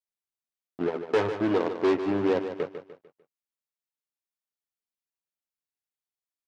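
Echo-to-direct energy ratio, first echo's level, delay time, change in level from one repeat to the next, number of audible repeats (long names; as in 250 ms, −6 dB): −9.0 dB, −9.5 dB, 149 ms, −8.0 dB, 4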